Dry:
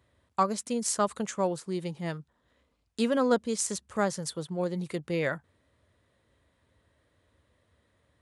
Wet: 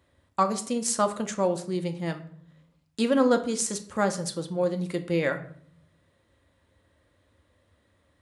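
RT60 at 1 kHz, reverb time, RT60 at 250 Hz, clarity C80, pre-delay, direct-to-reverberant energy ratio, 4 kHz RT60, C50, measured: 0.50 s, 0.60 s, 0.80 s, 17.0 dB, 3 ms, 7.0 dB, 0.40 s, 13.0 dB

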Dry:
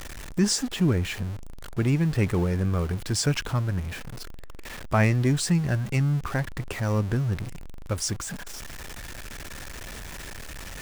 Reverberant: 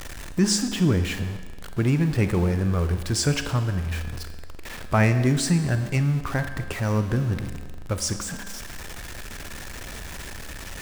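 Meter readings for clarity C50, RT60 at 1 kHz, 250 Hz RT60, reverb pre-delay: 9.5 dB, 1.5 s, 1.5 s, 30 ms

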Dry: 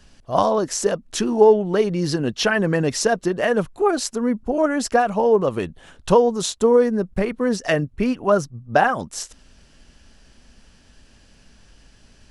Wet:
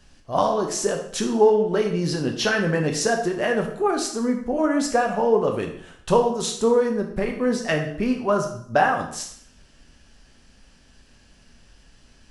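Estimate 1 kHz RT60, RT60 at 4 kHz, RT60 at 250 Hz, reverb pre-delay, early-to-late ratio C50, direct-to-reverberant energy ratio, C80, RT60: 0.60 s, 0.55 s, 0.65 s, 6 ms, 7.5 dB, 2.0 dB, 10.5 dB, 0.60 s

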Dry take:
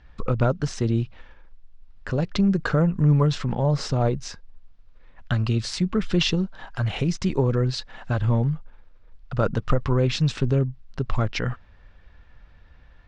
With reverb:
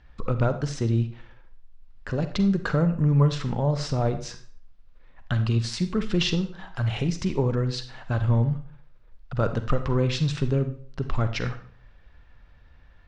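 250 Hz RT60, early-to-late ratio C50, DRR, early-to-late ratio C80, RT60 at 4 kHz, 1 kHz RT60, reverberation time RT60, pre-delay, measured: 0.55 s, 11.5 dB, 9.5 dB, 14.5 dB, 0.45 s, 0.45 s, 0.50 s, 37 ms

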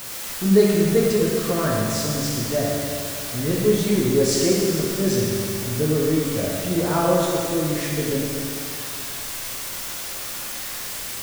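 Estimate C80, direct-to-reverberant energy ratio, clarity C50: 0.0 dB, -4.5 dB, -1.5 dB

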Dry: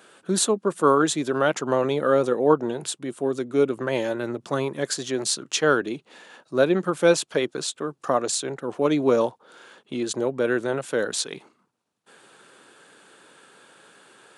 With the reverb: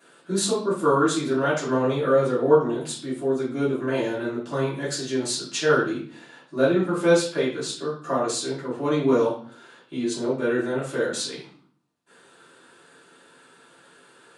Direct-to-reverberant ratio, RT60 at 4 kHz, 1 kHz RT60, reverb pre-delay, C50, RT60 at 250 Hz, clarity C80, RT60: -10.5 dB, 0.50 s, 0.45 s, 3 ms, 5.0 dB, 0.75 s, 10.5 dB, 0.45 s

